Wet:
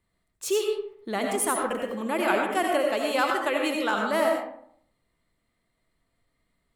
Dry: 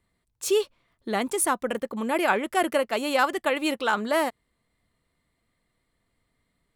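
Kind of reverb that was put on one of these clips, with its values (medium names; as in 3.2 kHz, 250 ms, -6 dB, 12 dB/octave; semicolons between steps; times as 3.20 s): algorithmic reverb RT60 0.66 s, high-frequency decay 0.5×, pre-delay 45 ms, DRR 1 dB; trim -3 dB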